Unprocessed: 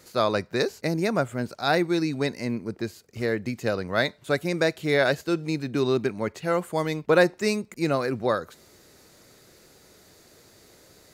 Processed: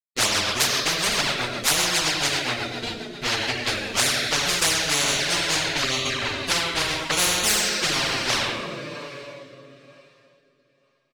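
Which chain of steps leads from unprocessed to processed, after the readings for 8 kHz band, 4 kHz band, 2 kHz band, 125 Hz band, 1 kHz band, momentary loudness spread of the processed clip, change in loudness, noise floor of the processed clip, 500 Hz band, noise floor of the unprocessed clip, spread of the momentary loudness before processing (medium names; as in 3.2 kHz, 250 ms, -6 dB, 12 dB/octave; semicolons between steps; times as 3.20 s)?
+20.5 dB, +14.5 dB, +5.5 dB, -3.5 dB, +2.5 dB, 11 LU, +4.0 dB, -66 dBFS, -7.0 dB, -55 dBFS, 8 LU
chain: expander on every frequency bin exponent 2; treble shelf 11 kHz +5 dB; hysteresis with a dead band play -25.5 dBFS; two-slope reverb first 0.6 s, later 3.3 s, from -21 dB, DRR -5 dB; touch-sensitive flanger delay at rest 8.1 ms, full sweep at -18 dBFS; rotary cabinet horn 7.5 Hz, later 1.1 Hz, at 3.20 s; frequency weighting D; feedback delay 89 ms, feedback 56%, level -18.5 dB; spectrum-flattening compressor 10:1; trim +4.5 dB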